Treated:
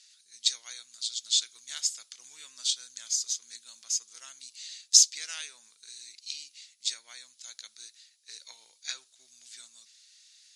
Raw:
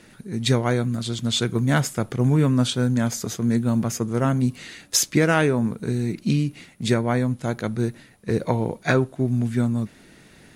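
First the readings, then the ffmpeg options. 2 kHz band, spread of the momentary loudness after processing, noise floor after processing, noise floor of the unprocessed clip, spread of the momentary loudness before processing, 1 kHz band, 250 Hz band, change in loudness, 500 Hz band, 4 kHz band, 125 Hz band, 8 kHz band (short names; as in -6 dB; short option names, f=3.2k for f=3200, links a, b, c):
-19.0 dB, 22 LU, -65 dBFS, -51 dBFS, 8 LU, under -25 dB, under -40 dB, -5.0 dB, under -40 dB, +1.0 dB, under -40 dB, +3.0 dB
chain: -af "asuperpass=centerf=5600:order=4:qfactor=1.5,volume=4dB"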